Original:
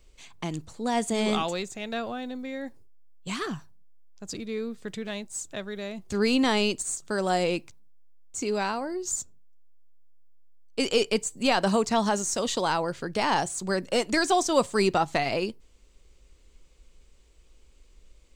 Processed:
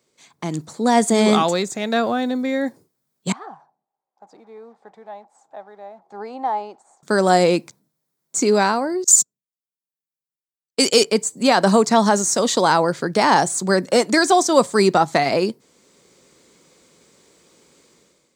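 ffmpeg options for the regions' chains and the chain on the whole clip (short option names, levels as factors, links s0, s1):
-filter_complex "[0:a]asettb=1/sr,asplit=3[s0][s1][s2];[s0]atrim=end=3.324[s3];[s1]atrim=start=3.32:end=7.03,asetpts=PTS-STARTPTS,afade=t=in:d=0.004:c=qsin,afade=t=out:st=3.706:d=0.004:c=qsin,acrusher=bits=7:mix=0:aa=0.5,bandpass=f=800:t=q:w=8.5[s4];[s2]atrim=start=7.026[s5];[s3][s4]acrossfade=d=0.004:c1=hsin:c2=qsin[s6];[s6][s5]acrossfade=d=0.004:c1=qsin:c2=hsin,asettb=1/sr,asplit=3[s7][s8][s9];[s7]atrim=end=9.044[s10];[s8]atrim=start=9.04:end=11.04,asetpts=PTS-STARTPTS,afade=t=in:d=0.004:c=qsin,afade=t=out:st=1.996:d=0.004:c=qsin,agate=range=0.0447:threshold=0.0178:ratio=16:release=100:detection=peak,highshelf=f=3000:g=11[s11];[s9]atrim=start=11.036[s12];[s10][s11]acrossfade=d=0.004:c1=hsin:c2=qsin[s13];[s13][s12]acrossfade=d=0.004:c1=qsin:c2=hsin,highpass=f=140:w=0.5412,highpass=f=140:w=1.3066,equalizer=f=2800:w=3.3:g=-9,dynaudnorm=f=200:g=5:m=4.73"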